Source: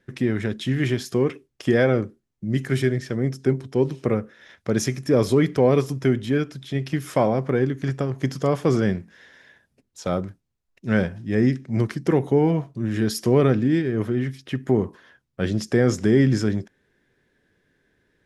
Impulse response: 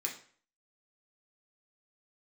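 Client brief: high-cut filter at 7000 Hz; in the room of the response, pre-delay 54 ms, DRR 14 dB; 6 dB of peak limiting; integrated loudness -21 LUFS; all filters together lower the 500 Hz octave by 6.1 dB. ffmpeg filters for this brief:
-filter_complex "[0:a]lowpass=7k,equalizer=f=500:t=o:g=-8,alimiter=limit=-14.5dB:level=0:latency=1,asplit=2[a][b];[1:a]atrim=start_sample=2205,adelay=54[c];[b][c]afir=irnorm=-1:irlink=0,volume=-15.5dB[d];[a][d]amix=inputs=2:normalize=0,volume=6dB"

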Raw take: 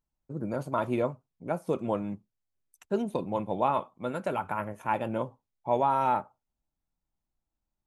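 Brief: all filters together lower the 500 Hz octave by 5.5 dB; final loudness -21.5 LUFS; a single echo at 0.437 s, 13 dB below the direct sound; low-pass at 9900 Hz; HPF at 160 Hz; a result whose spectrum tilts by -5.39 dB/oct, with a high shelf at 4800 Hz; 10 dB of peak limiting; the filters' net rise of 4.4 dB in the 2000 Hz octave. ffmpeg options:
-af "highpass=160,lowpass=9.9k,equalizer=f=500:t=o:g=-7.5,equalizer=f=2k:t=o:g=8,highshelf=f=4.8k:g=-5.5,alimiter=level_in=0.5dB:limit=-24dB:level=0:latency=1,volume=-0.5dB,aecho=1:1:437:0.224,volume=16dB"

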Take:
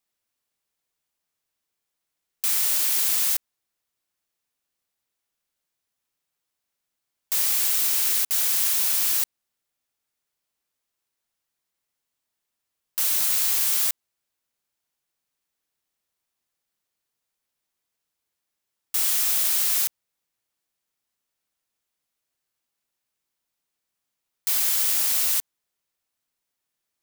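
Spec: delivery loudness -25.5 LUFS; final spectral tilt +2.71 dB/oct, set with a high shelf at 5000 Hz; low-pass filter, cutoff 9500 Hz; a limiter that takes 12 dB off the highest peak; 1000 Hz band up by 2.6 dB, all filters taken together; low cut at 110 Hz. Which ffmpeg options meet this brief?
-af "highpass=110,lowpass=9.5k,equalizer=f=1k:t=o:g=3,highshelf=f=5k:g=6.5,volume=5dB,alimiter=limit=-18dB:level=0:latency=1"

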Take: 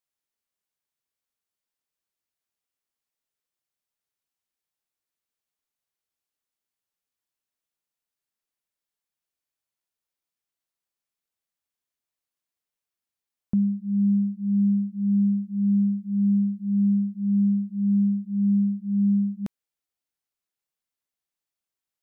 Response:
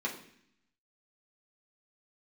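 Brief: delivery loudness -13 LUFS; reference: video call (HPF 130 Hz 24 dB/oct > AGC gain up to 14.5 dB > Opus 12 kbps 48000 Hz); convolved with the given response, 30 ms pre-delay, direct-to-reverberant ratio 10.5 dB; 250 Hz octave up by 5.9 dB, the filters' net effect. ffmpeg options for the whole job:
-filter_complex "[0:a]equalizer=f=250:t=o:g=8.5,asplit=2[a][b];[1:a]atrim=start_sample=2205,adelay=30[c];[b][c]afir=irnorm=-1:irlink=0,volume=-15dB[d];[a][d]amix=inputs=2:normalize=0,highpass=f=130:w=0.5412,highpass=f=130:w=1.3066,dynaudnorm=m=14.5dB" -ar 48000 -c:a libopus -b:a 12k

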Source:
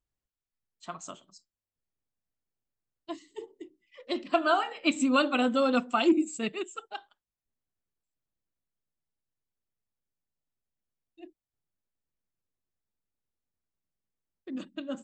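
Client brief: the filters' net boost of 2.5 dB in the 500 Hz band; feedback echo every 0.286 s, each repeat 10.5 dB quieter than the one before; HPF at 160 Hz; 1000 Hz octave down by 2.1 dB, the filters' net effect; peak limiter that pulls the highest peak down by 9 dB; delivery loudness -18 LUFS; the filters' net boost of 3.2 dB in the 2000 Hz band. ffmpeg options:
-af "highpass=160,equalizer=f=500:t=o:g=5.5,equalizer=f=1k:t=o:g=-8.5,equalizer=f=2k:t=o:g=8,alimiter=limit=-17dB:level=0:latency=1,aecho=1:1:286|572|858:0.299|0.0896|0.0269,volume=11dB"

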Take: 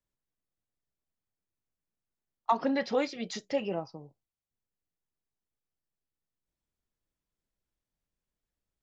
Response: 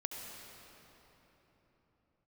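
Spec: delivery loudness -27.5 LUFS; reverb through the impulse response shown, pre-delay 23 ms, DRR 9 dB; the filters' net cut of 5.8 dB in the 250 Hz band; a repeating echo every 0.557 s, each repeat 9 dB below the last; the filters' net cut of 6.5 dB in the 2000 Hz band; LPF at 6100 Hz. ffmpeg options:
-filter_complex "[0:a]lowpass=6.1k,equalizer=f=250:t=o:g=-6.5,equalizer=f=2k:t=o:g=-7.5,aecho=1:1:557|1114|1671|2228:0.355|0.124|0.0435|0.0152,asplit=2[a][b];[1:a]atrim=start_sample=2205,adelay=23[c];[b][c]afir=irnorm=-1:irlink=0,volume=-9dB[d];[a][d]amix=inputs=2:normalize=0,volume=7dB"

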